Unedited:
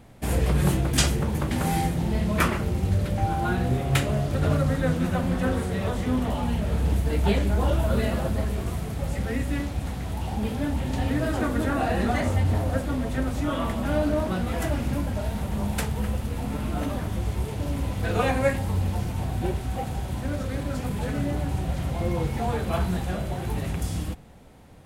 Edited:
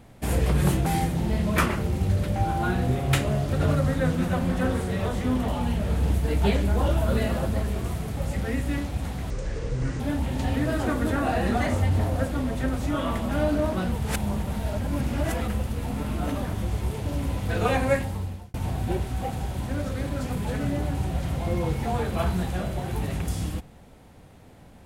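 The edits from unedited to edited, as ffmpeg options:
-filter_complex "[0:a]asplit=7[s0][s1][s2][s3][s4][s5][s6];[s0]atrim=end=0.862[s7];[s1]atrim=start=1.678:end=10.124[s8];[s2]atrim=start=10.12:end=10.54,asetpts=PTS-STARTPTS,asetrate=26460,aresample=44100[s9];[s3]atrim=start=10.536:end=14.462[s10];[s4]atrim=start=14.458:end=16.022,asetpts=PTS-STARTPTS,areverse[s11];[s5]atrim=start=16.018:end=19.08,asetpts=PTS-STARTPTS,afade=t=out:st=2.452:d=0.61[s12];[s6]atrim=start=19.08,asetpts=PTS-STARTPTS,afade=t=in:d=0.004:c=hsin[s13];[s7][s8]acrossfade=d=0.004:c1=hsin:c2=hsin[s14];[s14][s9]acrossfade=d=0.004:c1=hsin:c2=hsin[s15];[s15][s10]acrossfade=d=0.004:c1=hsin:c2=hsin[s16];[s16][s11]acrossfade=d=0.004:c1=hsin:c2=hsin[s17];[s12][s13]concat=n=2:v=0:a=1[s18];[s17][s18]acrossfade=d=0.004:c1=hsin:c2=hsin"

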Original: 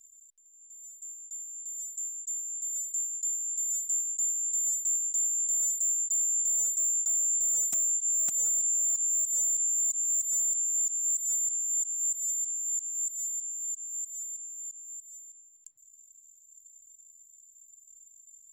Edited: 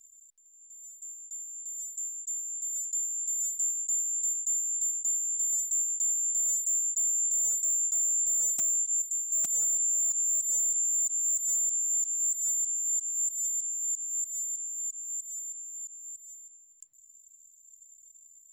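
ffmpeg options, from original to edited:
-filter_complex "[0:a]asplit=6[s0][s1][s2][s3][s4][s5];[s0]atrim=end=2.852[s6];[s1]atrim=start=3.148:end=4.632[s7];[s2]atrim=start=4.048:end=4.632[s8];[s3]atrim=start=4.048:end=8.162[s9];[s4]atrim=start=2.848:end=3.152[s10];[s5]atrim=start=8.158[s11];[s6][s7]acrossfade=d=0.004:c1=hsin:c2=hsin[s12];[s12][s8]acrossfade=d=0.004:c1=hsin:c2=hsin[s13];[s13][s9]acrossfade=d=0.004:c1=hsin:c2=hsin[s14];[s14][s10]acrossfade=d=0.004:c1=hsin:c2=hsin[s15];[s15][s11]acrossfade=d=0.004:c1=hsin:c2=hsin"

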